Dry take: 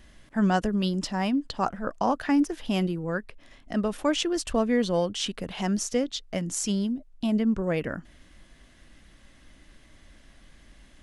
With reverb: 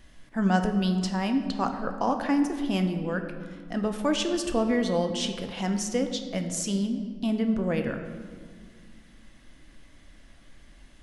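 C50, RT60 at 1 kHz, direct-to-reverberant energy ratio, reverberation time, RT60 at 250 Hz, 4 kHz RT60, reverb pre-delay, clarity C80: 8.0 dB, 1.7 s, 5.5 dB, 1.8 s, 2.7 s, 1.1 s, 4 ms, 9.0 dB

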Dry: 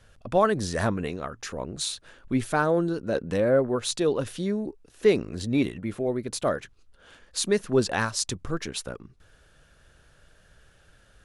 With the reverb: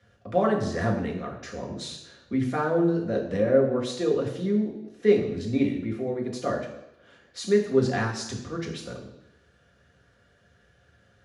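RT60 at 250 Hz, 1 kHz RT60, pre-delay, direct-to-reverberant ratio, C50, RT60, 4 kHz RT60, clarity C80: 0.80 s, 0.85 s, 3 ms, -1.0 dB, 7.0 dB, 0.85 s, 0.90 s, 9.5 dB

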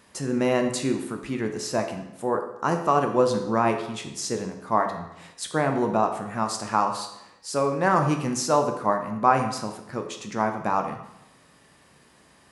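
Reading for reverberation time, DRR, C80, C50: 0.85 s, 4.5 dB, 10.0 dB, 7.5 dB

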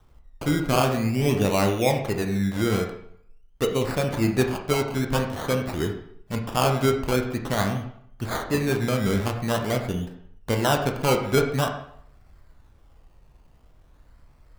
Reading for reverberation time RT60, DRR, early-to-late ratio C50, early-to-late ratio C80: 0.65 s, 3.5 dB, 7.5 dB, 10.0 dB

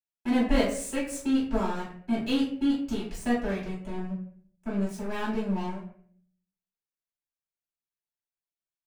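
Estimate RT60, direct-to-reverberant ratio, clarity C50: 0.55 s, -9.0 dB, 5.5 dB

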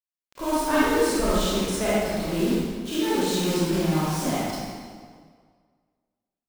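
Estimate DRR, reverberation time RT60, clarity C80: -10.5 dB, 1.8 s, -1.5 dB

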